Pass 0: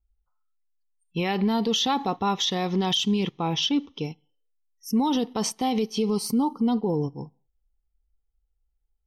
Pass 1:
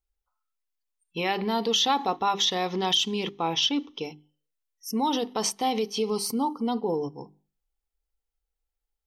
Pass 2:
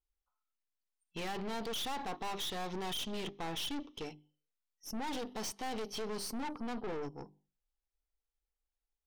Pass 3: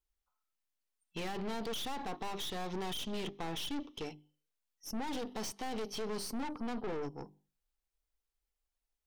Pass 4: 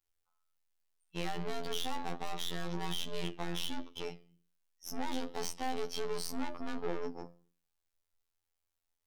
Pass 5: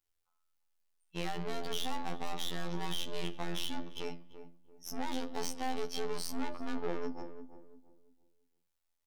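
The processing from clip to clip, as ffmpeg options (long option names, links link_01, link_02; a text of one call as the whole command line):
ffmpeg -i in.wav -af "bass=frequency=250:gain=-12,treble=frequency=4000:gain=0,bandreject=frequency=50:width_type=h:width=6,bandreject=frequency=100:width_type=h:width=6,bandreject=frequency=150:width_type=h:width=6,bandreject=frequency=200:width_type=h:width=6,bandreject=frequency=250:width_type=h:width=6,bandreject=frequency=300:width_type=h:width=6,bandreject=frequency=350:width_type=h:width=6,bandreject=frequency=400:width_type=h:width=6,volume=1.5dB" out.wav
ffmpeg -i in.wav -af "highshelf=frequency=11000:gain=-10.5,aeval=exprs='(tanh(50.1*val(0)+0.65)-tanh(0.65))/50.1':channel_layout=same,volume=-3dB" out.wav
ffmpeg -i in.wav -filter_complex "[0:a]acrossover=split=490[link_01][link_02];[link_02]acompressor=threshold=-43dB:ratio=2[link_03];[link_01][link_03]amix=inputs=2:normalize=0,volume=1.5dB" out.wav
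ffmpeg -i in.wav -af "flanger=delay=9:depth=4.3:regen=80:speed=1.3:shape=sinusoidal,bandreject=frequency=50:width_type=h:width=6,bandreject=frequency=100:width_type=h:width=6,bandreject=frequency=150:width_type=h:width=6,bandreject=frequency=200:width_type=h:width=6,bandreject=frequency=250:width_type=h:width=6,bandreject=frequency=300:width_type=h:width=6,bandreject=frequency=350:width_type=h:width=6,bandreject=frequency=400:width_type=h:width=6,bandreject=frequency=450:width_type=h:width=6,bandreject=frequency=500:width_type=h:width=6,afftfilt=real='hypot(re,im)*cos(PI*b)':imag='0':win_size=2048:overlap=0.75,volume=9dB" out.wav
ffmpeg -i in.wav -filter_complex "[0:a]asplit=2[link_01][link_02];[link_02]adelay=340,lowpass=frequency=850:poles=1,volume=-10dB,asplit=2[link_03][link_04];[link_04]adelay=340,lowpass=frequency=850:poles=1,volume=0.34,asplit=2[link_05][link_06];[link_06]adelay=340,lowpass=frequency=850:poles=1,volume=0.34,asplit=2[link_07][link_08];[link_08]adelay=340,lowpass=frequency=850:poles=1,volume=0.34[link_09];[link_01][link_03][link_05][link_07][link_09]amix=inputs=5:normalize=0" out.wav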